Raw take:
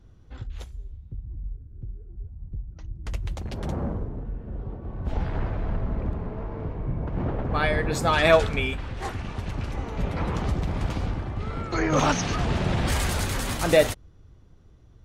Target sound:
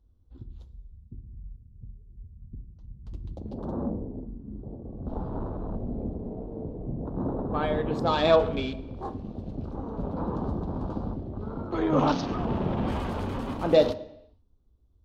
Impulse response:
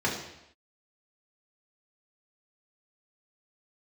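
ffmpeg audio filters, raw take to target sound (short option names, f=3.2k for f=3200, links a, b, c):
-filter_complex "[0:a]afwtdn=0.02,equalizer=f=250:t=o:w=1:g=10,equalizer=f=500:t=o:w=1:g=5,equalizer=f=1k:t=o:w=1:g=7,equalizer=f=2k:t=o:w=1:g=-9,equalizer=f=4k:t=o:w=1:g=10,equalizer=f=8k:t=o:w=1:g=-3,asplit=2[a][b];[1:a]atrim=start_sample=2205,adelay=27[c];[b][c]afir=irnorm=-1:irlink=0,volume=-22.5dB[d];[a][d]amix=inputs=2:normalize=0,volume=-8.5dB"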